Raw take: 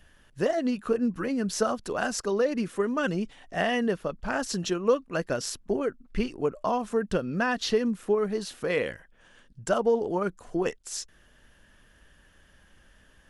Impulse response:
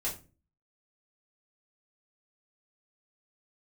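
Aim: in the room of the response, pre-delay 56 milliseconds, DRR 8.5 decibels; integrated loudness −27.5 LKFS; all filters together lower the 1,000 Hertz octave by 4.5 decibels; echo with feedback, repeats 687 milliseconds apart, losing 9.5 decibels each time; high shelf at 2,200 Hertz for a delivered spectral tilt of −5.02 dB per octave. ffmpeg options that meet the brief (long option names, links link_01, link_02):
-filter_complex "[0:a]equalizer=frequency=1000:width_type=o:gain=-5.5,highshelf=frequency=2200:gain=-4.5,aecho=1:1:687|1374|2061|2748:0.335|0.111|0.0365|0.012,asplit=2[link_01][link_02];[1:a]atrim=start_sample=2205,adelay=56[link_03];[link_02][link_03]afir=irnorm=-1:irlink=0,volume=-12dB[link_04];[link_01][link_04]amix=inputs=2:normalize=0,volume=1.5dB"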